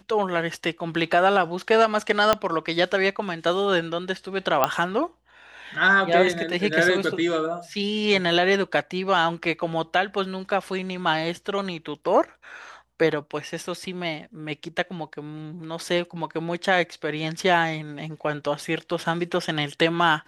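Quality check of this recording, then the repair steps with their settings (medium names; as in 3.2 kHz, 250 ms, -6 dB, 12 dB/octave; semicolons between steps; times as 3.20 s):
2.33 s: pop -5 dBFS
4.64 s: pop -5 dBFS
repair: de-click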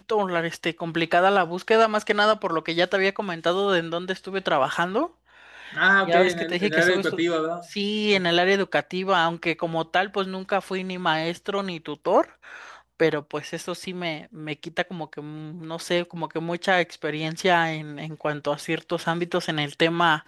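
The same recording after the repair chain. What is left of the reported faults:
2.33 s: pop
4.64 s: pop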